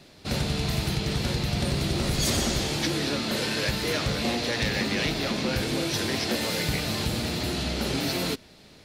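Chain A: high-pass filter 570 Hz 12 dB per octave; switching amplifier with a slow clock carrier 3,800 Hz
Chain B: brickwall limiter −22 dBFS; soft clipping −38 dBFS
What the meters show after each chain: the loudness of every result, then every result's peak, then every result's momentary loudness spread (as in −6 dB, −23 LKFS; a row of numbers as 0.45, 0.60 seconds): −33.0, −39.0 LKFS; −20.0, −38.0 dBFS; 2, 1 LU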